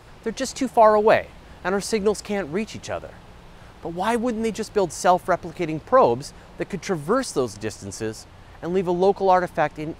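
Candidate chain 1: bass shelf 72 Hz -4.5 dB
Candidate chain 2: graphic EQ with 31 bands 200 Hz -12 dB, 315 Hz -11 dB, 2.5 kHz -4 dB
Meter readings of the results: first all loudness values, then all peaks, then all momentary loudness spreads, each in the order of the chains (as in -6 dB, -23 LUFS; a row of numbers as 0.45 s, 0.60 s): -22.5 LUFS, -23.5 LUFS; -4.0 dBFS, -4.0 dBFS; 15 LU, 16 LU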